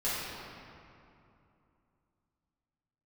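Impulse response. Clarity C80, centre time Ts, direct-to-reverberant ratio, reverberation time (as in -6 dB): -1.0 dB, 0.157 s, -11.0 dB, 2.7 s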